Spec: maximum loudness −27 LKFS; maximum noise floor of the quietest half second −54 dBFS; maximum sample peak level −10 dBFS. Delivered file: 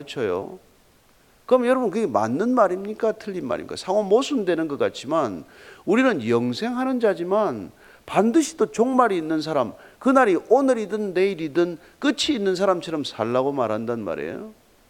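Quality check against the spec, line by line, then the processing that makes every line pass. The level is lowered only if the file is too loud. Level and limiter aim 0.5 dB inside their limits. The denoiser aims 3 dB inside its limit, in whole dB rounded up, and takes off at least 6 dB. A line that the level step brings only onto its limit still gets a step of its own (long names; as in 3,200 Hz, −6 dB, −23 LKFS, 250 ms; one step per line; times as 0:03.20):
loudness −22.5 LKFS: out of spec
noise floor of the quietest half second −57 dBFS: in spec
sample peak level −2.5 dBFS: out of spec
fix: level −5 dB
brickwall limiter −10.5 dBFS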